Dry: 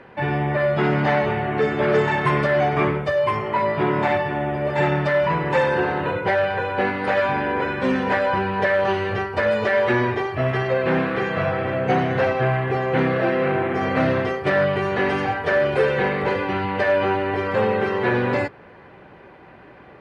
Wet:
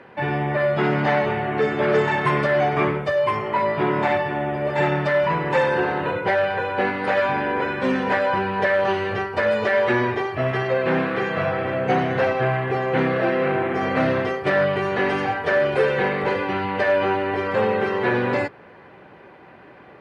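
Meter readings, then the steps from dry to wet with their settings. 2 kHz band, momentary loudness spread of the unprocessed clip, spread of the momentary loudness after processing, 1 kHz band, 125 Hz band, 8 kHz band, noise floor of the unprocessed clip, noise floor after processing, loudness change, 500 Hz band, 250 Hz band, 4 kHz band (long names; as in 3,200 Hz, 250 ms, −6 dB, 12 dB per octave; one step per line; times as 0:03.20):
0.0 dB, 4 LU, 4 LU, 0.0 dB, −2.5 dB, can't be measured, −46 dBFS, −46 dBFS, −0.5 dB, 0.0 dB, −1.0 dB, 0.0 dB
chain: high-pass filter 120 Hz 6 dB per octave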